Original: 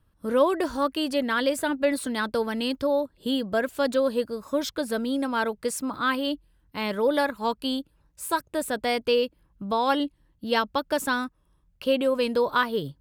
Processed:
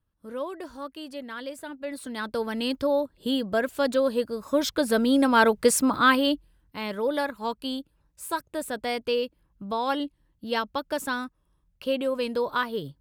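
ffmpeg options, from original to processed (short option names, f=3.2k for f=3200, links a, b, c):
-af "volume=8.5dB,afade=t=in:st=1.83:d=0.88:silence=0.251189,afade=t=in:st=4.29:d=1.41:silence=0.375837,afade=t=out:st=5.7:d=1.09:silence=0.251189"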